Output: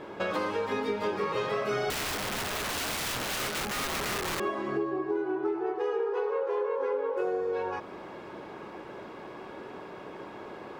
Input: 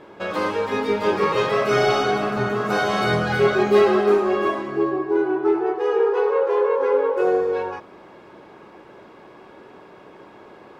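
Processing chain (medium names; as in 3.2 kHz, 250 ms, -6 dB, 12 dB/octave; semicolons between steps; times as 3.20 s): compression 6:1, threshold -30 dBFS, peak gain reduction 17.5 dB; 1.90–4.40 s: integer overflow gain 29.5 dB; trim +2 dB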